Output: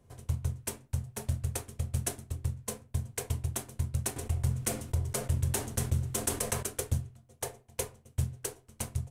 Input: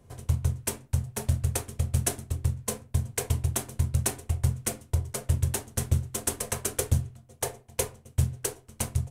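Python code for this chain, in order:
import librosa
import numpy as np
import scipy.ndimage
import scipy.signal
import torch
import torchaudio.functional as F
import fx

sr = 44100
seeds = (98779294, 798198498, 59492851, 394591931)

y = fx.env_flatten(x, sr, amount_pct=50, at=(4.16, 6.63))
y = y * 10.0 ** (-6.0 / 20.0)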